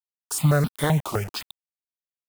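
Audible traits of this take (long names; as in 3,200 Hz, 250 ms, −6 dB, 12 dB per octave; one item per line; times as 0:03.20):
a quantiser's noise floor 6 bits, dither none
notches that jump at a steady rate 7.8 Hz 450–2,000 Hz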